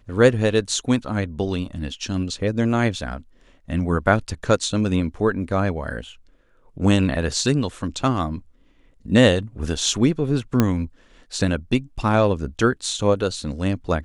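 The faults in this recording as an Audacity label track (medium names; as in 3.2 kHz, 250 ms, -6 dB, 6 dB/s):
10.600000	10.600000	pop -4 dBFS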